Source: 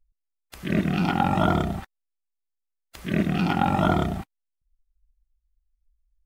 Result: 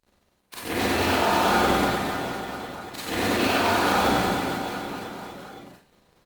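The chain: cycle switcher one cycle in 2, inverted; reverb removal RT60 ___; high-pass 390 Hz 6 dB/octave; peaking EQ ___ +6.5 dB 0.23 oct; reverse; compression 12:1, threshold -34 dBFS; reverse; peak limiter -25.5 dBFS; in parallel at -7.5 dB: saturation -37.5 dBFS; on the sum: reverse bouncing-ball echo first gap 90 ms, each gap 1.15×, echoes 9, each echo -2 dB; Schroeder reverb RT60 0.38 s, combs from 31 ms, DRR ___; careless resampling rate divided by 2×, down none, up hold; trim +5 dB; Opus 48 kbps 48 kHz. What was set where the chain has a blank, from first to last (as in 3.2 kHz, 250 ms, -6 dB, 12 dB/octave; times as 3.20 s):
1.1 s, 4.1 kHz, -7 dB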